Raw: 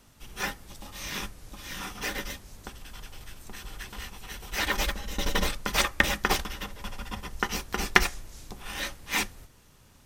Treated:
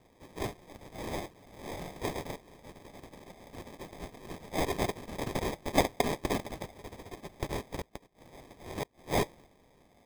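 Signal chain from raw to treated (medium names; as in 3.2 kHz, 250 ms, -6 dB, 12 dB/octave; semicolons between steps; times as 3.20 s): inverse Chebyshev high-pass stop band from 350 Hz, stop band 80 dB; sample-and-hold 31×; 7.73–9.02 s: inverted gate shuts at -26 dBFS, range -32 dB; trim +1.5 dB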